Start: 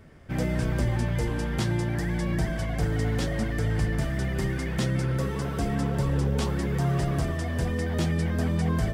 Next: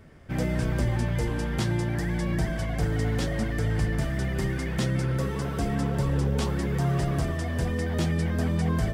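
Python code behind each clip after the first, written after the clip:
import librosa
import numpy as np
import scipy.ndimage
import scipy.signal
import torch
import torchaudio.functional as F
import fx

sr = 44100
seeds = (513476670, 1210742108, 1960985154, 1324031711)

y = x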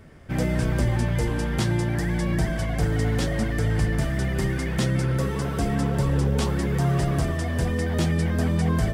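y = fx.peak_eq(x, sr, hz=9500.0, db=2.0, octaves=0.77)
y = F.gain(torch.from_numpy(y), 3.0).numpy()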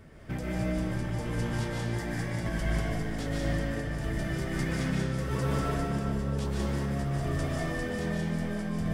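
y = fx.over_compress(x, sr, threshold_db=-27.0, ratio=-1.0)
y = fx.rev_freeverb(y, sr, rt60_s=1.3, hf_ratio=0.85, predelay_ms=105, drr_db=-3.5)
y = F.gain(torch.from_numpy(y), -7.5).numpy()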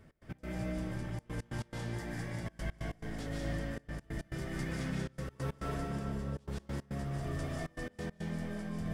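y = fx.step_gate(x, sr, bpm=139, pattern='x.x.xxxxxxx.', floor_db=-24.0, edge_ms=4.5)
y = F.gain(torch.from_numpy(y), -7.0).numpy()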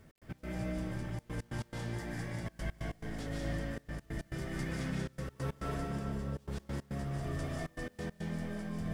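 y = fx.quant_dither(x, sr, seeds[0], bits=12, dither='none')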